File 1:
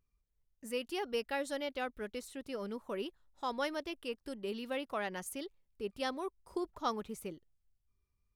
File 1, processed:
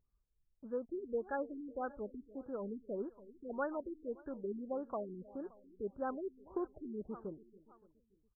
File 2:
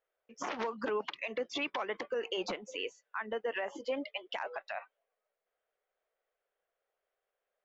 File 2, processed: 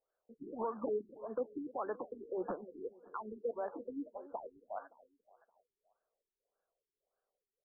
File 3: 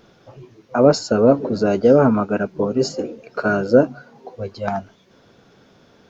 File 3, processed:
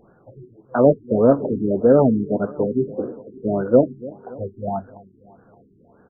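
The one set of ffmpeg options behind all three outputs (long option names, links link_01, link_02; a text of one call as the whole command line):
ffmpeg -i in.wav -af "acrusher=bits=5:mode=log:mix=0:aa=0.000001,aecho=1:1:285|570|855|1140:0.119|0.0618|0.0321|0.0167,afftfilt=real='re*lt(b*sr/1024,410*pow(1800/410,0.5+0.5*sin(2*PI*1.7*pts/sr)))':imag='im*lt(b*sr/1024,410*pow(1800/410,0.5+0.5*sin(2*PI*1.7*pts/sr)))':win_size=1024:overlap=0.75,volume=-1dB" out.wav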